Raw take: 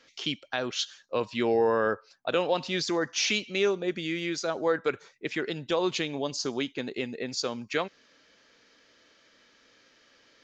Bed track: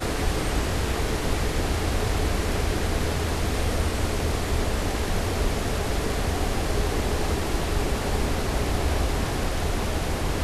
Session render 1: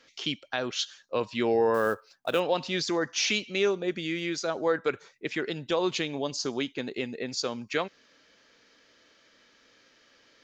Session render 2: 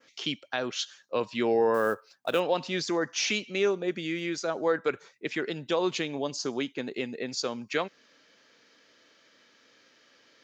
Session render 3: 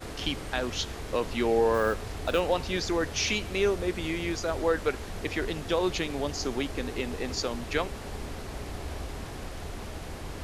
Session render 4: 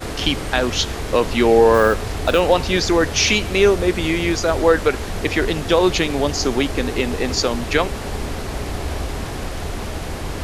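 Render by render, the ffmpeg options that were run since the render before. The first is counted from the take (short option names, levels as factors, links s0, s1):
-filter_complex "[0:a]asettb=1/sr,asplit=3[s0][s1][s2];[s0]atrim=end=1.744[s3];[s1]atrim=start=1.74:end=2.4,asetpts=PTS-STARTPTS,afade=t=in:d=0.004:c=qsin,afade=t=out:st=0.656:d=0.004:c=qsin,acrusher=bits=6:mode=log:mix=0:aa=0.000001[s4];[s2]atrim=start=2.396[s5];[s3][s4]acrossfade=d=0.004:c1=hsin:c2=qsin[s6];[s6][s5]acrossfade=d=0.004:c1=qsin:c2=hsin"
-af "highpass=120,adynamicequalizer=threshold=0.00562:dfrequency=3900:dqfactor=1.2:tfrequency=3900:tqfactor=1.2:attack=5:release=100:ratio=0.375:range=2.5:mode=cutabove:tftype=bell"
-filter_complex "[1:a]volume=0.237[s0];[0:a][s0]amix=inputs=2:normalize=0"
-af "volume=3.76,alimiter=limit=0.708:level=0:latency=1"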